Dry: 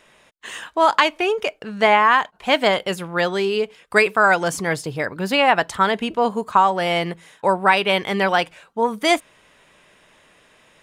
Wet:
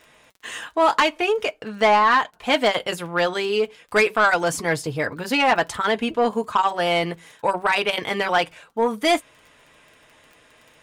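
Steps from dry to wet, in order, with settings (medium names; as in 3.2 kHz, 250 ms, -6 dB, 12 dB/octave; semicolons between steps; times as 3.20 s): crackle 15 per s -36 dBFS; comb of notches 190 Hz; saturation -11 dBFS, distortion -16 dB; trim +1.5 dB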